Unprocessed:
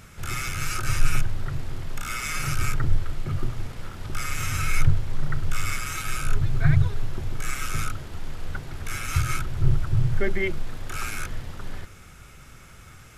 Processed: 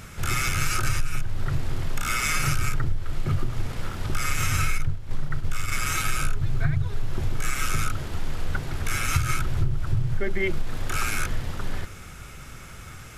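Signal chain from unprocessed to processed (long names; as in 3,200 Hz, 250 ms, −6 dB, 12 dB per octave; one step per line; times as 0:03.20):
downward compressor 20 to 1, threshold −23 dBFS, peak gain reduction 14 dB
0:04.78–0:05.72: noise gate −27 dBFS, range −8 dB
level +5.5 dB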